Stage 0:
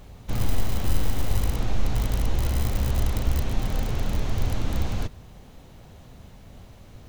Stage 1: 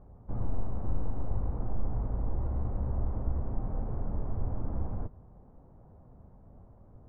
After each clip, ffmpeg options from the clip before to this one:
ffmpeg -i in.wav -af "lowpass=frequency=1100:width=0.5412,lowpass=frequency=1100:width=1.3066,volume=-7.5dB" out.wav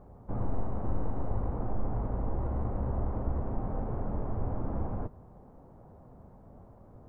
ffmpeg -i in.wav -af "lowshelf=frequency=140:gain=-8.5,volume=6dB" out.wav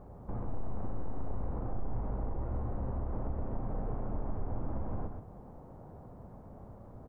ffmpeg -i in.wav -filter_complex "[0:a]acompressor=threshold=-36dB:ratio=2.5,asoftclip=type=tanh:threshold=-29.5dB,asplit=2[link_01][link_02];[link_02]aecho=0:1:96.21|131.2:0.282|0.447[link_03];[link_01][link_03]amix=inputs=2:normalize=0,volume=2dB" out.wav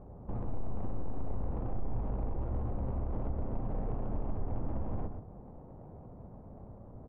ffmpeg -i in.wav -af "adynamicsmooth=sensitivity=4.5:basefreq=1100,volume=1dB" out.wav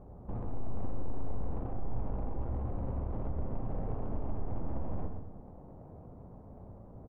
ffmpeg -i in.wav -af "aecho=1:1:85|170|255|340|425|510:0.299|0.167|0.0936|0.0524|0.0294|0.0164,volume=-1dB" out.wav

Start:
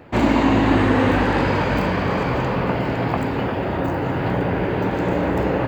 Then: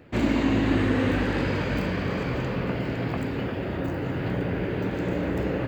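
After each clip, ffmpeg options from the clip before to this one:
ffmpeg -i in.wav -af "equalizer=frequency=890:width_type=o:width=1:gain=-9,volume=-5dB" out.wav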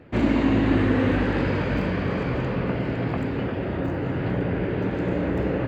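ffmpeg -i in.wav -af "lowpass=frequency=2600:poles=1,volume=2.5dB" out.wav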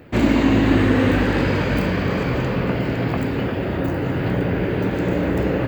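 ffmpeg -i in.wav -af "aemphasis=mode=production:type=50fm,volume=4.5dB" out.wav

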